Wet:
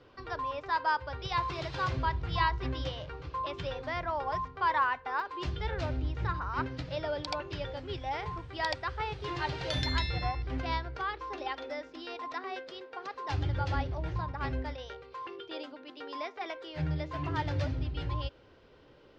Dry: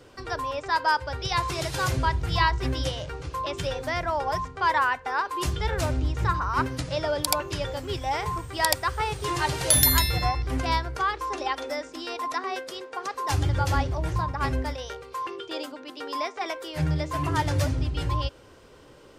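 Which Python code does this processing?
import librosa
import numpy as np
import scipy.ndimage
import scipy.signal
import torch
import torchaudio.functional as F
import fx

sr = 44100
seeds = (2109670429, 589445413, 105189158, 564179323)

y = scipy.signal.sosfilt(scipy.signal.butter(4, 4500.0, 'lowpass', fs=sr, output='sos'), x)
y = fx.peak_eq(y, sr, hz=1100.0, db=fx.steps((0.0, 4.5), (5.2, -3.5)), octaves=0.27)
y = y * librosa.db_to_amplitude(-7.0)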